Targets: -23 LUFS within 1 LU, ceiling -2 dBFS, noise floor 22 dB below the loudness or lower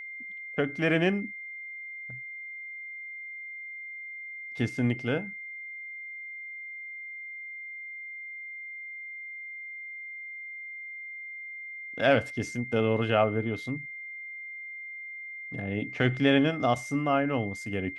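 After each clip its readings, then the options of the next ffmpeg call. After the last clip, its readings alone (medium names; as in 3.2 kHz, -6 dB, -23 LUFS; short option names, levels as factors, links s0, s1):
steady tone 2.1 kHz; tone level -38 dBFS; loudness -31.5 LUFS; peak level -10.5 dBFS; loudness target -23.0 LUFS
-> -af "bandreject=f=2100:w=30"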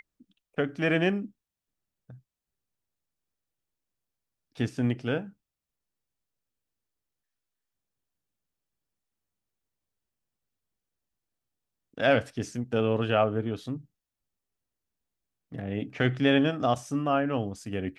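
steady tone not found; loudness -28.0 LUFS; peak level -10.5 dBFS; loudness target -23.0 LUFS
-> -af "volume=1.78"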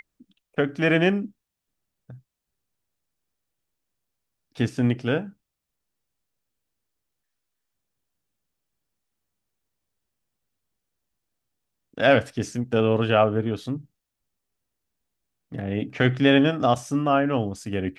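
loudness -23.0 LUFS; peak level -5.5 dBFS; noise floor -84 dBFS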